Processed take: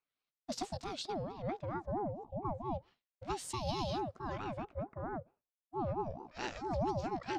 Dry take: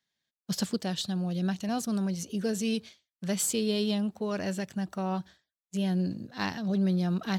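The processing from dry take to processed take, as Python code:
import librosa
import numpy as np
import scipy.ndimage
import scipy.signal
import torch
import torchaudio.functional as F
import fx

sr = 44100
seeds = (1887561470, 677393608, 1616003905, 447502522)

y = fx.pitch_glide(x, sr, semitones=4.0, runs='starting unshifted')
y = fx.filter_lfo_lowpass(y, sr, shape='sine', hz=0.33, low_hz=580.0, high_hz=7800.0, q=0.8)
y = fx.ring_lfo(y, sr, carrier_hz=470.0, swing_pct=35, hz=4.5)
y = y * 10.0 ** (-4.5 / 20.0)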